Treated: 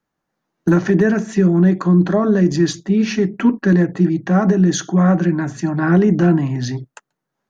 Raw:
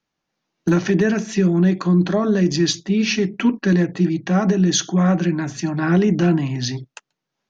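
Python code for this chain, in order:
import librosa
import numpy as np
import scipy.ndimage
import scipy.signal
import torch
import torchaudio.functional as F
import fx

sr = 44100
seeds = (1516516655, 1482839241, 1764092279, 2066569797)

y = fx.band_shelf(x, sr, hz=3700.0, db=-9.0, octaves=1.7)
y = y * librosa.db_to_amplitude(3.0)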